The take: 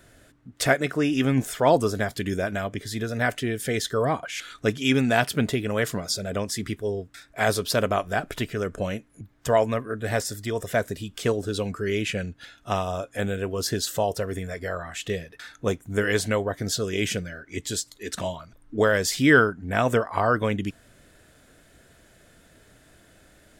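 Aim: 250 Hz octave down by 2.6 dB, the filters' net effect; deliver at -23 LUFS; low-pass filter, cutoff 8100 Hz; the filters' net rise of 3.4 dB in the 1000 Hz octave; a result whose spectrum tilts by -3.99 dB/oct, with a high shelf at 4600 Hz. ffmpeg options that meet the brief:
-af "lowpass=8.1k,equalizer=f=250:t=o:g=-3.5,equalizer=f=1k:t=o:g=5.5,highshelf=f=4.6k:g=-5,volume=2.5dB"

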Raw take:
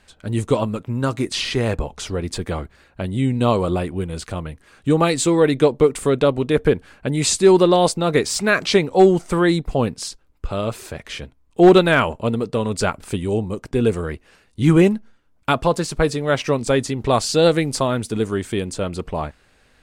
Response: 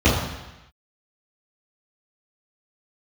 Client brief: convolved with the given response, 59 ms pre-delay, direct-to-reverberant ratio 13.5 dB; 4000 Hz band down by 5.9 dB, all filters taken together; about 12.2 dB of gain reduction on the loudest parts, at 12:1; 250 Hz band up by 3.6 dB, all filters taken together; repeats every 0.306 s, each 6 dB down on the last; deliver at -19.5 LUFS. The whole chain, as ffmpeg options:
-filter_complex "[0:a]equalizer=f=250:t=o:g=5.5,equalizer=f=4k:t=o:g=-7.5,acompressor=threshold=-17dB:ratio=12,aecho=1:1:306|612|918|1224|1530|1836:0.501|0.251|0.125|0.0626|0.0313|0.0157,asplit=2[a][b];[1:a]atrim=start_sample=2205,adelay=59[c];[b][c]afir=irnorm=-1:irlink=0,volume=-35dB[d];[a][d]amix=inputs=2:normalize=0,volume=2.5dB"

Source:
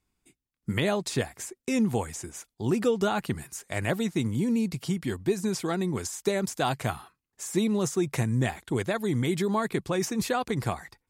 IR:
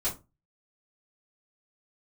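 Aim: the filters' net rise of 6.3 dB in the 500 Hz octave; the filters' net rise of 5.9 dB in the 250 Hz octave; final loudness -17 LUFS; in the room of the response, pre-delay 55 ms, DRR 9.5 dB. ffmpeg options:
-filter_complex "[0:a]equalizer=f=250:t=o:g=6,equalizer=f=500:t=o:g=6,asplit=2[a][b];[1:a]atrim=start_sample=2205,adelay=55[c];[b][c]afir=irnorm=-1:irlink=0,volume=-15.5dB[d];[a][d]amix=inputs=2:normalize=0,volume=6dB"

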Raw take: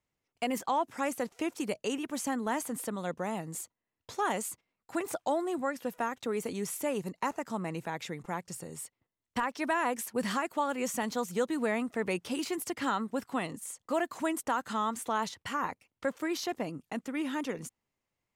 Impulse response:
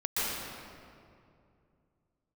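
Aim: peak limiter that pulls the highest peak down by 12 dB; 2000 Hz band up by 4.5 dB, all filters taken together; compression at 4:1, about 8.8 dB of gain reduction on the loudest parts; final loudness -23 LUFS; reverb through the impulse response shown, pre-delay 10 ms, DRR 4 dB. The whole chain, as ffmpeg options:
-filter_complex "[0:a]equalizer=f=2k:t=o:g=5.5,acompressor=threshold=-35dB:ratio=4,alimiter=level_in=9.5dB:limit=-24dB:level=0:latency=1,volume=-9.5dB,asplit=2[a][b];[1:a]atrim=start_sample=2205,adelay=10[c];[b][c]afir=irnorm=-1:irlink=0,volume=-13.5dB[d];[a][d]amix=inputs=2:normalize=0,volume=19dB"

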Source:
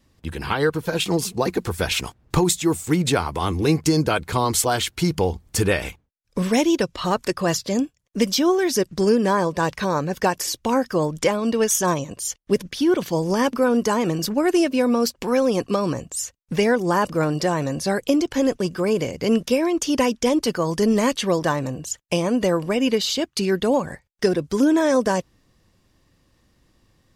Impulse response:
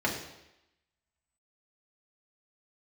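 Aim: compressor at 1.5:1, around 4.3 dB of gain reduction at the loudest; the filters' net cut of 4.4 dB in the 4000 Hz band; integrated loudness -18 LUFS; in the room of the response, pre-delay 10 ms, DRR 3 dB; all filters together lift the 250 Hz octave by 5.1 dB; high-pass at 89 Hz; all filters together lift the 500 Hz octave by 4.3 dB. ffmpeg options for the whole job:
-filter_complex "[0:a]highpass=89,equalizer=f=250:t=o:g=5.5,equalizer=f=500:t=o:g=3.5,equalizer=f=4k:t=o:g=-6,acompressor=threshold=-21dB:ratio=1.5,asplit=2[a][b];[1:a]atrim=start_sample=2205,adelay=10[c];[b][c]afir=irnorm=-1:irlink=0,volume=-13.5dB[d];[a][d]amix=inputs=2:normalize=0,volume=0.5dB"

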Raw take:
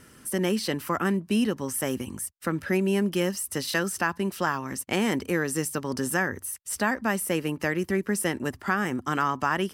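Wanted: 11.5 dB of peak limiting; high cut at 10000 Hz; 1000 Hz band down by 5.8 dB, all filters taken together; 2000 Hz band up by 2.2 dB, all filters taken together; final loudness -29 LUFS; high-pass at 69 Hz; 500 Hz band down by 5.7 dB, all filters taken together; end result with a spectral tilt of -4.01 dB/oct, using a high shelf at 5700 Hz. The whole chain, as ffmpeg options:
-af "highpass=69,lowpass=10k,equalizer=f=500:t=o:g=-6.5,equalizer=f=1k:t=o:g=-8.5,equalizer=f=2k:t=o:g=6.5,highshelf=f=5.7k:g=-4,volume=4.5dB,alimiter=limit=-18.5dB:level=0:latency=1"

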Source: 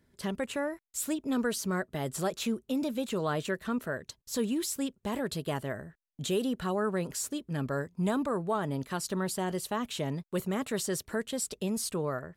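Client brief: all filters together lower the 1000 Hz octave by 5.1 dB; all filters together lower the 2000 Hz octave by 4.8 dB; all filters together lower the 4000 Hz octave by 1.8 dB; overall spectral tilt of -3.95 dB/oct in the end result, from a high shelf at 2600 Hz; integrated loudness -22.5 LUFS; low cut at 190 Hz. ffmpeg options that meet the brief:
-af "highpass=190,equalizer=f=1k:t=o:g=-6,equalizer=f=2k:t=o:g=-5,highshelf=f=2.6k:g=5,equalizer=f=4k:t=o:g=-5,volume=11.5dB"

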